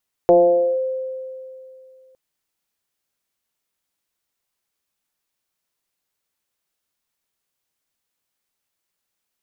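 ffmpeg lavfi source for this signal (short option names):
-f lavfi -i "aevalsrc='0.422*pow(10,-3*t/2.63)*sin(2*PI*521*t+0.98*clip(1-t/0.5,0,1)*sin(2*PI*0.33*521*t))':d=1.86:s=44100"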